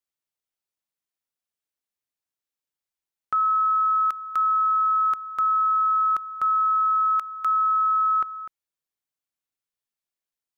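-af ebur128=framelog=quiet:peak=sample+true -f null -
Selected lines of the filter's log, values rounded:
Integrated loudness:
  I:         -21.4 LUFS
  Threshold: -31.6 LUFS
Loudness range:
  LRA:         5.4 LU
  Threshold: -42.9 LUFS
  LRA low:   -26.6 LUFS
  LRA high:  -21.2 LUFS
Sample peak:
  Peak:      -17.9 dBFS
True peak:
  Peak:      -17.0 dBFS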